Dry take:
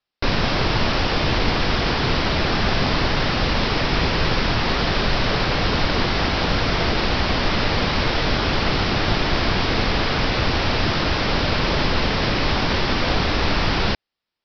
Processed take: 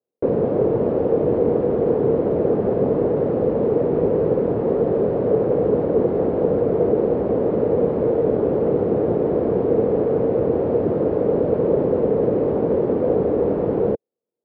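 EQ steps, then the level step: high-pass 140 Hz 12 dB/octave; resonant low-pass 470 Hz, resonance Q 4.9; distance through air 78 m; 0.0 dB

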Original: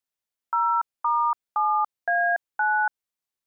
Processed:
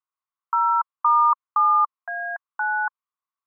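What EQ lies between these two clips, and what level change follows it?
resonant high-pass 1.1 kHz, resonance Q 8.1; distance through air 490 m; band-stop 1.7 kHz, Q 11; -3.5 dB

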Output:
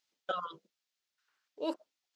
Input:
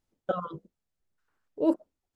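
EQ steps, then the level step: distance through air 220 m; differentiator; treble shelf 2.9 kHz +10.5 dB; +14.0 dB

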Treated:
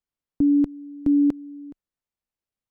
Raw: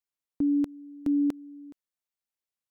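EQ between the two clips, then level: tilt EQ -2.5 dB/octave; +2.0 dB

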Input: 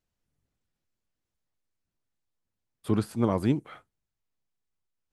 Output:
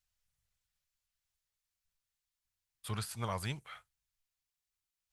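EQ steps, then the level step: amplifier tone stack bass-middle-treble 10-0-10; +4.0 dB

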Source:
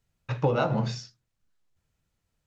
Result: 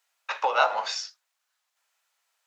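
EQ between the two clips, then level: high-pass 750 Hz 24 dB/octave; +9.0 dB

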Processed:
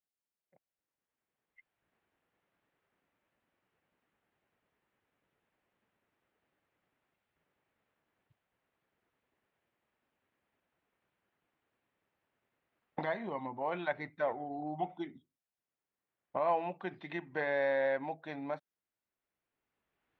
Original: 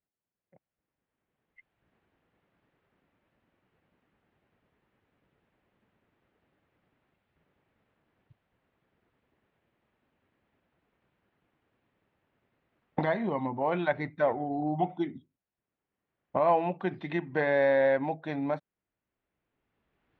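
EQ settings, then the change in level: bass shelf 370 Hz -9 dB; -4.5 dB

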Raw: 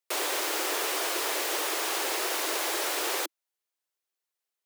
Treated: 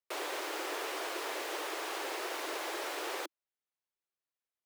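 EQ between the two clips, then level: treble shelf 4.6 kHz -11 dB; -5.5 dB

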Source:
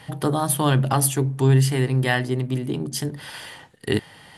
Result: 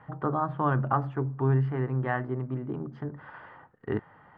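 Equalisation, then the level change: four-pole ladder low-pass 1.5 kHz, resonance 50%; +1.5 dB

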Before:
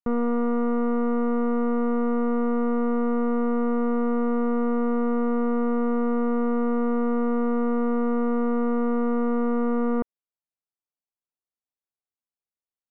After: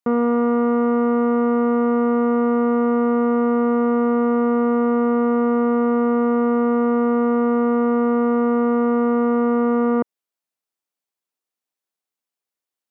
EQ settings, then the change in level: high-pass 200 Hz; +7.0 dB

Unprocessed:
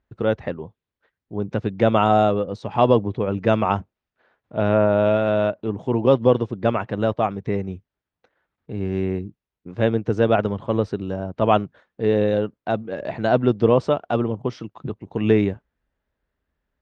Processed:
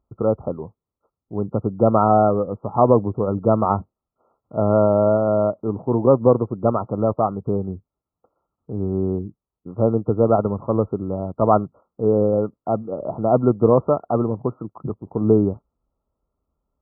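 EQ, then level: brick-wall FIR low-pass 1.4 kHz; +1.5 dB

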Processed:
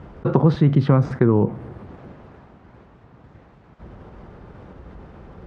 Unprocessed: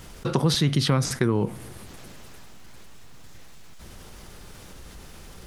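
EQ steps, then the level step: high-pass 52 Hz; low-pass 1.1 kHz 12 dB/octave; +6.5 dB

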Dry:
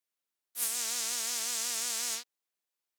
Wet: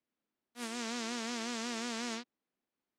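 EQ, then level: tape spacing loss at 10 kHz 27 dB; peaking EQ 240 Hz +13 dB 1.2 oct; +5.5 dB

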